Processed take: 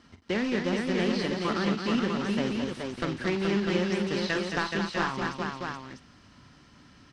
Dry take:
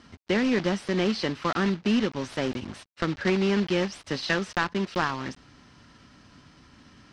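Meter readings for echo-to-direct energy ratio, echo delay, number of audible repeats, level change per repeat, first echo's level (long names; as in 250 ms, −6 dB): 0.0 dB, 45 ms, 4, repeats not evenly spaced, −11.0 dB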